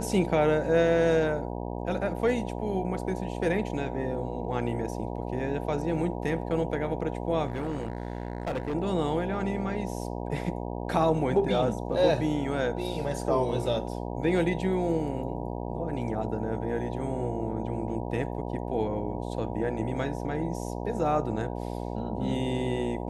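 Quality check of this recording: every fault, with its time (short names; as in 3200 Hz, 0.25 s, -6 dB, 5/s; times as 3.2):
buzz 60 Hz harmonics 16 -34 dBFS
7.47–8.75 clipped -26.5 dBFS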